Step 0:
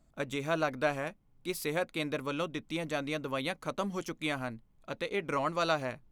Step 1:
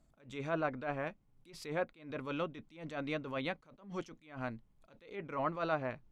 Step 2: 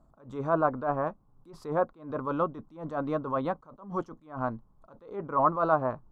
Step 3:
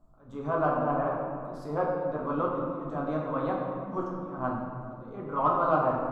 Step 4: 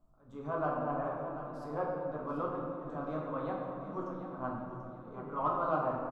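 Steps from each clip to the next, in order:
treble cut that deepens with the level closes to 2,100 Hz, closed at −28 dBFS; level that may rise only so fast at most 130 dB per second; level −2 dB
high shelf with overshoot 1,600 Hz −12.5 dB, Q 3; level +7 dB
in parallel at −10 dB: soft clipping −18.5 dBFS, distortion −15 dB; on the sum: convolution reverb RT60 2.2 s, pre-delay 7 ms, DRR −4 dB; level −7 dB
repeating echo 738 ms, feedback 32%, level −11 dB; level −7 dB

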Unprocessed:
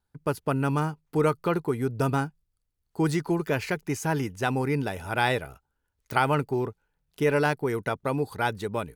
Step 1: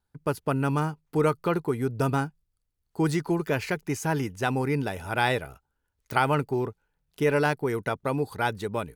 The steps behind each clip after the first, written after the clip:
no processing that can be heard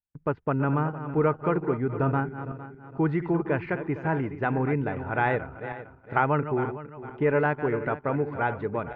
feedback delay that plays each chunk backwards 229 ms, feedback 56%, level −10.5 dB
low-pass filter 2,100 Hz 24 dB per octave
noise gate with hold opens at −41 dBFS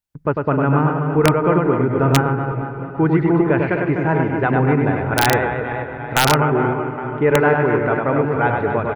reverse bouncing-ball delay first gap 100 ms, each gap 1.5×, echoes 5
comb and all-pass reverb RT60 4.5 s, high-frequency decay 0.55×, pre-delay 85 ms, DRR 15.5 dB
wrap-around overflow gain 11.5 dB
level +7.5 dB

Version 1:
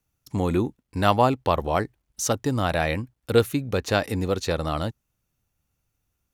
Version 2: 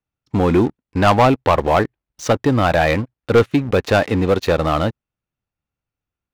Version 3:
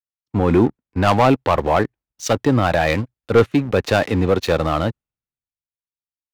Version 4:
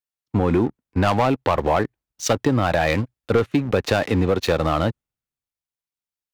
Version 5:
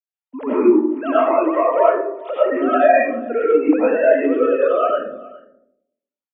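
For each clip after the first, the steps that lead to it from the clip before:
low-pass filter 3,100 Hz 12 dB per octave; low-shelf EQ 140 Hz −6.5 dB; leveller curve on the samples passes 3
brickwall limiter −9.5 dBFS, peak gain reduction 4.5 dB; pitch vibrato 0.86 Hz 21 cents; multiband upward and downward expander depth 70%; level +1 dB
downward compressor, threshold −16 dBFS, peak gain reduction 9 dB; level +1.5 dB
three sine waves on the formant tracks; single-tap delay 412 ms −21.5 dB; convolution reverb RT60 0.80 s, pre-delay 55 ms, DRR −9 dB; level −6.5 dB

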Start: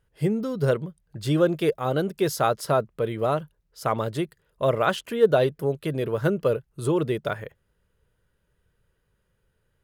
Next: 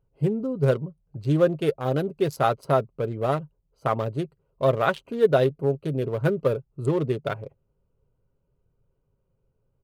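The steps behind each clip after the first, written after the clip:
adaptive Wiener filter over 25 samples
comb filter 7.4 ms, depth 34%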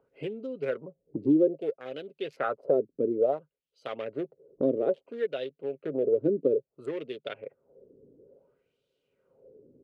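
LFO wah 0.59 Hz 290–3,600 Hz, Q 3.2
graphic EQ with 10 bands 250 Hz +9 dB, 500 Hz +11 dB, 1,000 Hz −10 dB
multiband upward and downward compressor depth 70%
level −2 dB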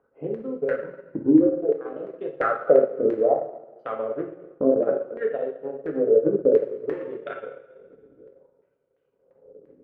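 auto-filter low-pass saw down 2.9 Hz 550–1,800 Hz
coupled-rooms reverb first 0.88 s, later 2.2 s, DRR −1 dB
transient designer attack +2 dB, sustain −6 dB
level −1 dB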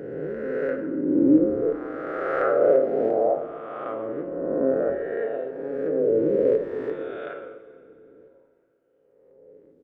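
peak hold with a rise ahead of every peak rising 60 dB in 1.99 s
echo with shifted repeats 126 ms, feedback 33%, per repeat −93 Hz, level −18 dB
feedback delay network reverb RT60 3.1 s, high-frequency decay 0.8×, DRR 14 dB
level −5.5 dB

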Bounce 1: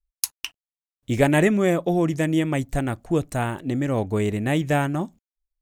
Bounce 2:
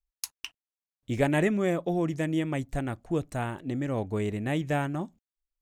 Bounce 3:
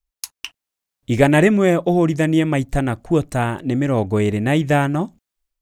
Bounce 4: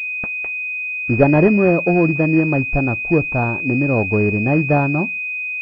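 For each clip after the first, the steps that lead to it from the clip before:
high-shelf EQ 8,800 Hz −7 dB; level −6.5 dB
automatic gain control gain up to 7 dB; level +4.5 dB
switching amplifier with a slow clock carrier 2,500 Hz; level +1 dB

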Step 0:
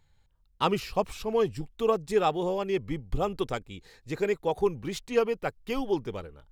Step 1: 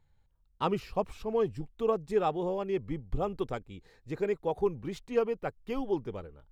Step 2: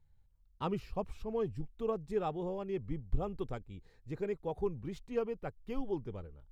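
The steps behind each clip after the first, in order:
high-shelf EQ 2,100 Hz −10 dB; level −2.5 dB
low-shelf EQ 180 Hz +10.5 dB; level −8 dB

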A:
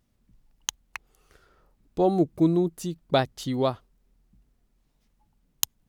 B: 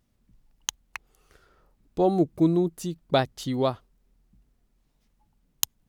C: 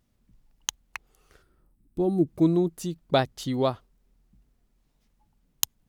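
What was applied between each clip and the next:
no processing that can be heard
gain on a spectral selection 0:01.42–0:02.27, 380–7,800 Hz −11 dB

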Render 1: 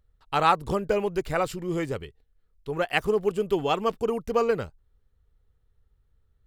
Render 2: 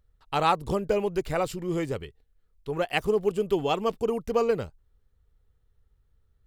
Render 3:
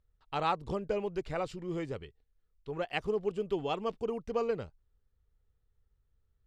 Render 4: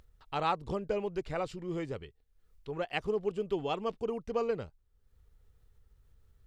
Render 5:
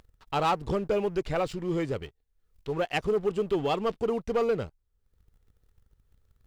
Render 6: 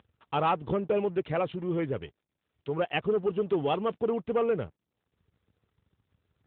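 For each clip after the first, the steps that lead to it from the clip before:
dynamic equaliser 1,500 Hz, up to −5 dB, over −39 dBFS, Q 1.3
low-pass filter 5,600 Hz 12 dB per octave; level −7.5 dB
upward compression, threshold −50 dBFS
leveller curve on the samples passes 2
AMR narrowband 12.2 kbit/s 8,000 Hz

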